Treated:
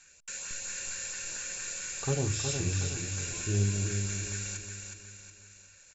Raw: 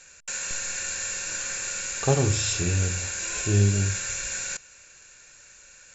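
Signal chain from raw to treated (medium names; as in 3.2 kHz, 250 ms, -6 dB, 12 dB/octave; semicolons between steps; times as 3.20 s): LFO notch saw up 4.4 Hz 450–2200 Hz; feedback delay 366 ms, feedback 44%, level -5.5 dB; trim -7.5 dB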